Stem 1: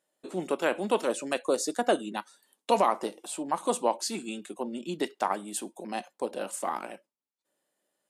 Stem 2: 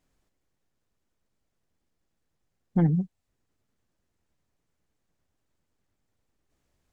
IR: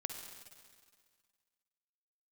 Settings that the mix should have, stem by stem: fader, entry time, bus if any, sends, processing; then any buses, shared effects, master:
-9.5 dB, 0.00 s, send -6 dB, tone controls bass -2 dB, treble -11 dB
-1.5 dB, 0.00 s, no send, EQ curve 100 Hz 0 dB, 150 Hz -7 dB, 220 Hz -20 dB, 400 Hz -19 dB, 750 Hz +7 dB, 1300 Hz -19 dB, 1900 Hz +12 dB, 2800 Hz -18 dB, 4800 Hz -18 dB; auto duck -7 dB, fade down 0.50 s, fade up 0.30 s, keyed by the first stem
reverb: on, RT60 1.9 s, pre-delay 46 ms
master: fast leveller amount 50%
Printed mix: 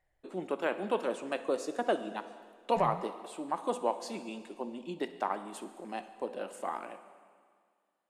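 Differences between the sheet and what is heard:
stem 1: send -6 dB -> 0 dB; master: missing fast leveller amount 50%

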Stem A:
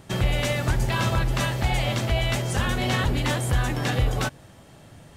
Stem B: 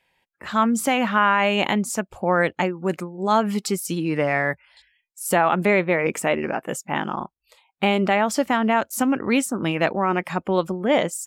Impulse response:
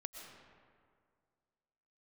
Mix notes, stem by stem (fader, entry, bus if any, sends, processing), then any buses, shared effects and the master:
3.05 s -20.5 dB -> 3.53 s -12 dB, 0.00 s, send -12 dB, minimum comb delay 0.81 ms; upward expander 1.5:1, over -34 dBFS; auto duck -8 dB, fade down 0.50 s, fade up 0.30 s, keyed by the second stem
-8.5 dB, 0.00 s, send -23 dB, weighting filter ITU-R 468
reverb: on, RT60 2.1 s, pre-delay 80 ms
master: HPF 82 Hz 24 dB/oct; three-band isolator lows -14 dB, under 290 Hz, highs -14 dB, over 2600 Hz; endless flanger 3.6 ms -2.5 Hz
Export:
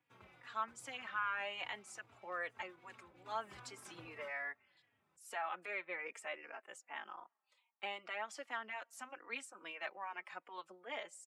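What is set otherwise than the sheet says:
stem B -8.5 dB -> -18.5 dB; reverb return -8.0 dB

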